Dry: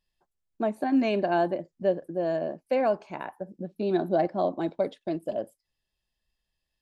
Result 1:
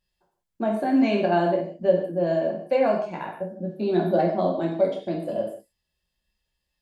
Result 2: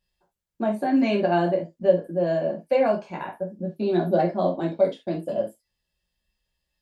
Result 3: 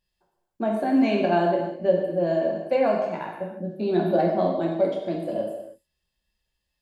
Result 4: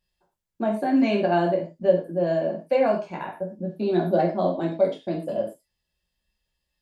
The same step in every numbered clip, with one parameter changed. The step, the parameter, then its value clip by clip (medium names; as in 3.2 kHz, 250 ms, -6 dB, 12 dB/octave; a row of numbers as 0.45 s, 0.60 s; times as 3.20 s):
gated-style reverb, gate: 210 ms, 100 ms, 350 ms, 140 ms